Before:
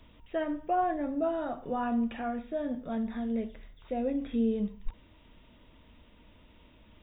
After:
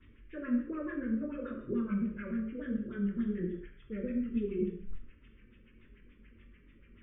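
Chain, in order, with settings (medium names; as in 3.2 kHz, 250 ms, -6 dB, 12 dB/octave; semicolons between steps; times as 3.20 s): sawtooth pitch modulation -4 st, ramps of 288 ms; chorus voices 2, 0.82 Hz, delay 24 ms, depth 1.7 ms; saturation -21 dBFS, distortion -29 dB; LFO low-pass sine 6.9 Hz 390–2400 Hz; Butterworth band-stop 760 Hz, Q 0.76; gated-style reverb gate 240 ms falling, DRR 1 dB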